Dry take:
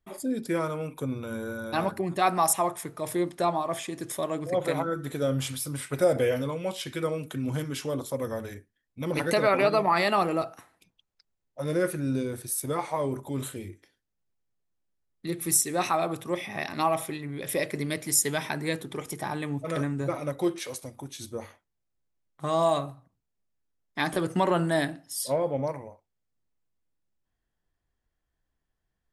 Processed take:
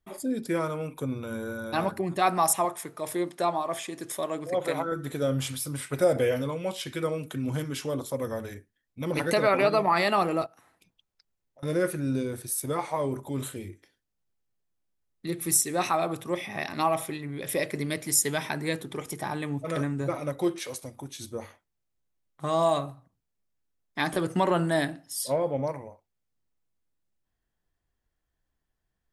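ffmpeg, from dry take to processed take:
-filter_complex "[0:a]asettb=1/sr,asplit=3[s0][s1][s2];[s0]atrim=end=2.654[s3];[s1]atrim=start=2.65:end=4.92,asetpts=PTS-STARTPTS,afade=t=in:d=0.004:c=qsin,afade=t=out:st=2.266:d=0.004:c=qsin,highpass=f=250:p=1[s4];[s2]atrim=start=4.916[s5];[s3][s4]acrossfade=d=0.004:c1=hsin:c2=qsin[s6];[s6][s5]acrossfade=d=0.004:c1=qsin:c2=hsin,asettb=1/sr,asplit=3[s7][s8][s9];[s7]atrim=end=10.464[s10];[s8]atrim=start=10.46:end=11.63,asetpts=PTS-STARTPTS,afade=t=in:d=0.004:c=qsin,afade=t=out:st=1.166:d=0.004:c=qsin,acompressor=threshold=0.002:ratio=6:attack=3.2:release=140:knee=1:detection=peak[s11];[s9]atrim=start=11.626[s12];[s10][s11]acrossfade=d=0.004:c1=hsin:c2=qsin[s13];[s13][s12]acrossfade=d=0.004:c1=qsin:c2=hsin"

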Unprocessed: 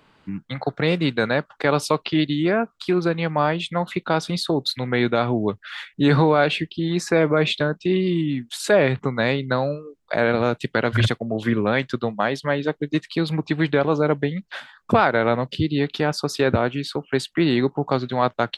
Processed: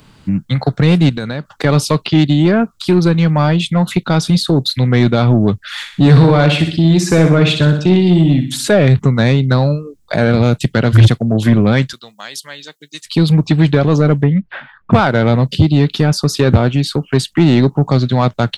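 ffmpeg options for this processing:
-filter_complex "[0:a]asettb=1/sr,asplit=3[s0][s1][s2];[s0]atrim=end=1.094[s3];[s1]atrim=start=1.09:end=1.52,asetpts=PTS-STARTPTS,afade=t=in:d=0.004:c=qsin,afade=t=out:st=0.426:d=0.004:c=qsin,acompressor=threshold=0.0316:ratio=3:attack=3.2:release=140:knee=1:detection=peak[s4];[s2]atrim=start=1.516[s5];[s3][s4]acrossfade=d=0.004:c1=hsin:c2=qsin[s6];[s6][s5]acrossfade=d=0.004:c1=qsin:c2=hsin,asettb=1/sr,asplit=3[s7][s8][s9];[s7]atrim=end=5.754[s10];[s8]atrim=start=5.75:end=8.68,asetpts=PTS-STARTPTS,afade=t=in:d=0.004:c=qsin,afade=t=out:st=2.926:d=0.004:c=qsin,aecho=1:1:61|122|183|244|305:0.355|0.163|0.0751|0.0345|0.0159,atrim=end_sample=129213[s11];[s9]atrim=start=8.676[s12];[s10][s11]acrossfade=d=0.004:c1=hsin:c2=qsin[s13];[s13][s12]acrossfade=d=0.004:c1=qsin:c2=hsin,asettb=1/sr,asplit=3[s14][s15][s16];[s14]atrim=end=11.934[s17];[s15]atrim=start=11.93:end=13.06,asetpts=PTS-STARTPTS,afade=t=in:d=0.004:c=qsin,afade=t=out:st=1.126:d=0.004:c=qsin,aderivative[s18];[s16]atrim=start=13.056[s19];[s17][s18]acrossfade=d=0.004:c1=hsin:c2=qsin[s20];[s20][s19]acrossfade=d=0.004:c1=qsin:c2=hsin,asettb=1/sr,asplit=3[s21][s22][s23];[s21]atrim=end=14.234[s24];[s22]atrim=start=14.23:end=14.93,asetpts=PTS-STARTPTS,afade=t=in:d=0.004:c=qsin,afade=t=out:st=0.696:d=0.004:c=qsin,lowpass=f=2400:w=0.5412,lowpass=f=2400:w=1.3066[s25];[s23]atrim=start=14.926[s26];[s24][s25]acrossfade=d=0.004:c1=hsin:c2=qsin[s27];[s27][s26]acrossfade=d=0.004:c1=qsin:c2=hsin,acrossover=split=3700[s28][s29];[s29]acompressor=threshold=0.0126:ratio=4:attack=1:release=60[s30];[s28][s30]amix=inputs=2:normalize=0,bass=f=250:g=13,treble=f=4000:g=13,acontrast=73,volume=0.891"

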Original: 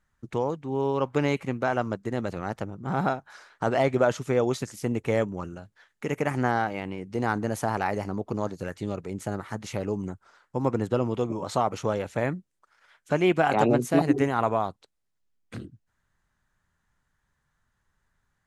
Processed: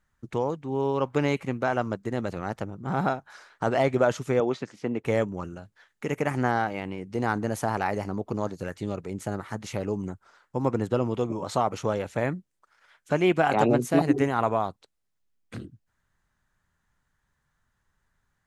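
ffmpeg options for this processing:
-filter_complex "[0:a]asettb=1/sr,asplit=3[s0][s1][s2];[s0]atrim=end=4.404[s3];[s1]atrim=start=4.4:end=5.05,asetpts=PTS-STARTPTS,afade=t=in:d=0.004:c=qsin,afade=t=out:st=0.646:d=0.004:c=qsin,highpass=180,lowpass=3300[s4];[s2]atrim=start=5.046[s5];[s3][s4]acrossfade=d=0.004:c1=hsin:c2=qsin[s6];[s6][s5]acrossfade=d=0.004:c1=qsin:c2=hsin"

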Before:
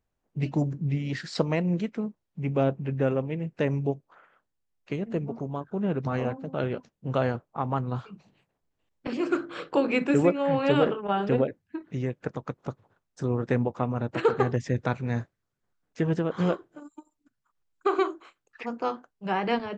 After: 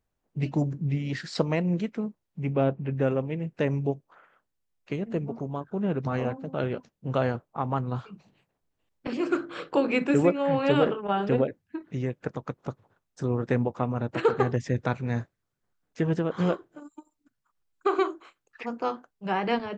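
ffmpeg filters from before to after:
-filter_complex "[0:a]asettb=1/sr,asplit=3[s0][s1][s2];[s0]atrim=end=2.534[s3];[s1]atrim=start=2.53:end=2.96,asetpts=PTS-STARTPTS,afade=t=in:d=0.004:c=qsin,afade=t=out:st=0.426:d=0.004:c=qsin,lowpass=3900[s4];[s2]atrim=start=2.956[s5];[s3][s4]acrossfade=d=0.004:c1=hsin:c2=qsin[s6];[s6][s5]acrossfade=d=0.004:c1=qsin:c2=hsin"

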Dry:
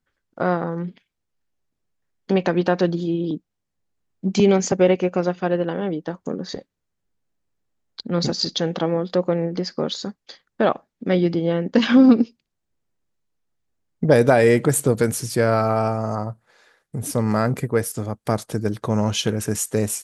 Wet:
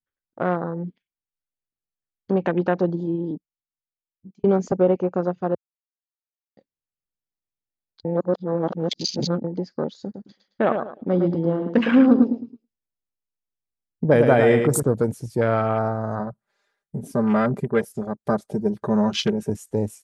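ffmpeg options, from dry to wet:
-filter_complex "[0:a]asettb=1/sr,asplit=3[s0][s1][s2];[s0]atrim=end=10.034[s3];[s1]atrim=start=10.03:end=14.83,asetpts=PTS-STARTPTS,afade=t=in:d=0.004:c=qsin,afade=t=out:st=4.796:d=0.004:c=qsin,aecho=1:1:109|218|327|436:0.501|0.155|0.0482|0.0149,atrim=end_sample=211680[s4];[s2]atrim=start=14.826[s5];[s3][s4]acrossfade=d=0.004:c1=hsin:c2=qsin[s6];[s6][s5]acrossfade=d=0.004:c1=qsin:c2=hsin,asettb=1/sr,asplit=3[s7][s8][s9];[s7]atrim=end=16.194[s10];[s8]atrim=start=16.19:end=19.5,asetpts=PTS-STARTPTS,afade=t=in:d=0.004:c=qsin,afade=t=out:st=3.306:d=0.004:c=qsin,aecho=1:1:5:0.84,atrim=end_sample=145971[s11];[s9]atrim=start=19.496[s12];[s10][s11]acrossfade=d=0.004:c1=hsin:c2=qsin[s13];[s13][s12]acrossfade=d=0.004:c1=qsin:c2=hsin,asplit=6[s14][s15][s16][s17][s18][s19];[s14]atrim=end=4.44,asetpts=PTS-STARTPTS,afade=t=out:st=3.11:d=1.33[s20];[s15]atrim=start=4.44:end=5.55,asetpts=PTS-STARTPTS,afade=t=in:d=0.004:c=hsin,afade=t=out:st=1.106:d=0.004:c=hsin[s21];[s16]atrim=start=5.55:end=6.57,asetpts=PTS-STARTPTS,volume=0[s22];[s17]atrim=start=6.57:end=8.052,asetpts=PTS-STARTPTS,afade=t=in:d=0.004:c=hsin[s23];[s18]atrim=start=8.048:end=9.442,asetpts=PTS-STARTPTS,areverse[s24];[s19]atrim=start=9.438[s25];[s20][s21][s22][s23]concat=n=4:v=0:a=1[s26];[s26][s24]acrossfade=d=0.004:c1=hsin:c2=hsin[s27];[s27][s25]acrossfade=d=0.004:c1=hsin:c2=hsin,afwtdn=0.0398,volume=0.794"

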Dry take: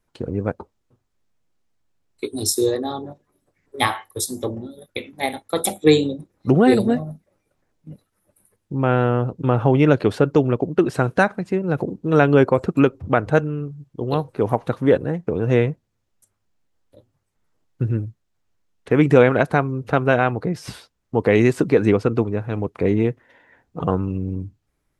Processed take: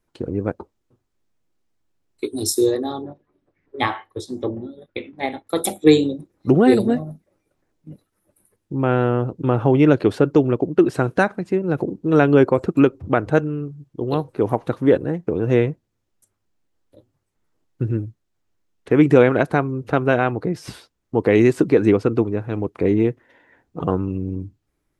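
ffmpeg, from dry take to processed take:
-filter_complex "[0:a]asettb=1/sr,asplit=3[s0][s1][s2];[s0]atrim=end=3.034[s3];[s1]atrim=start=3.03:end=5.47,asetpts=PTS-STARTPTS,afade=t=in:d=0.004:c=qsin,afade=t=out:st=2.436:d=0.004:c=qsin,lowpass=3300[s4];[s2]atrim=start=5.466[s5];[s3][s4]acrossfade=d=0.004:c1=hsin:c2=qsin[s6];[s6][s5]acrossfade=d=0.004:c1=qsin:c2=hsin,equalizer=f=330:w=2.4:g=5.5,volume=0.841"

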